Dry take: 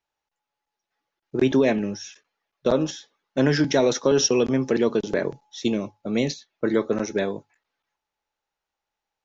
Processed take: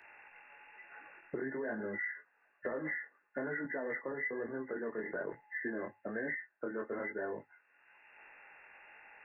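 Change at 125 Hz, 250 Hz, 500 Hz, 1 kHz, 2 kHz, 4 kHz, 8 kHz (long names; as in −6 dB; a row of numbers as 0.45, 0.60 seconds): −24.0 dB, −19.5 dB, −17.0 dB, −13.5 dB, −5.0 dB, below −40 dB, can't be measured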